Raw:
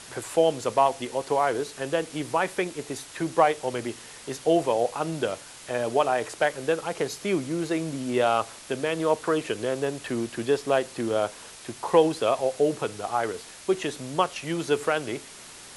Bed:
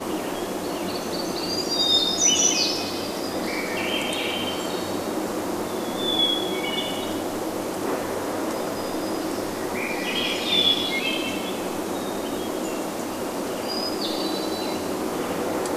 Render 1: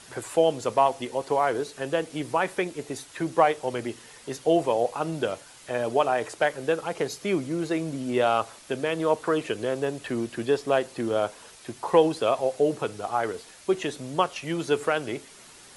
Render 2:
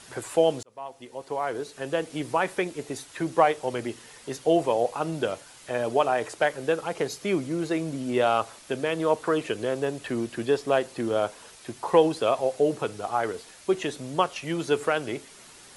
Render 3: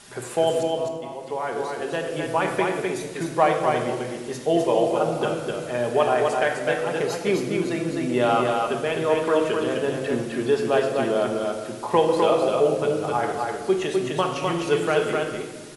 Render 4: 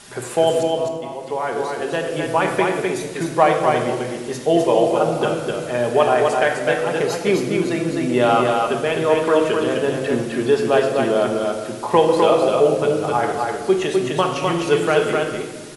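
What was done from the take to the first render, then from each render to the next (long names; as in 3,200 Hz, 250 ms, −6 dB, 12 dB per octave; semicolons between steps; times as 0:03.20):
broadband denoise 6 dB, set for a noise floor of −45 dBFS
0:00.63–0:02.13: fade in
single-tap delay 255 ms −3.5 dB; rectangular room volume 1,300 cubic metres, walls mixed, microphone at 1.3 metres
level +4.5 dB; brickwall limiter −2 dBFS, peak gain reduction 1 dB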